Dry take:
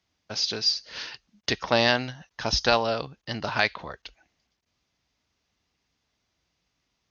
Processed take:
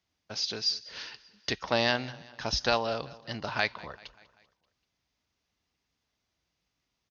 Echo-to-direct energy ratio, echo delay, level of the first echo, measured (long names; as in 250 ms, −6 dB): −19.5 dB, 194 ms, −21.0 dB